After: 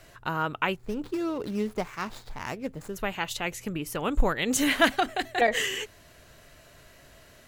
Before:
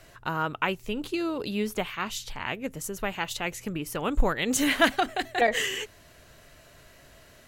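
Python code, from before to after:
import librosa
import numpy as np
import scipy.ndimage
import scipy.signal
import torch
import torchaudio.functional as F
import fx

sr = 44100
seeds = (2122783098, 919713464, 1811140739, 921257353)

y = fx.median_filter(x, sr, points=15, at=(0.76, 2.96))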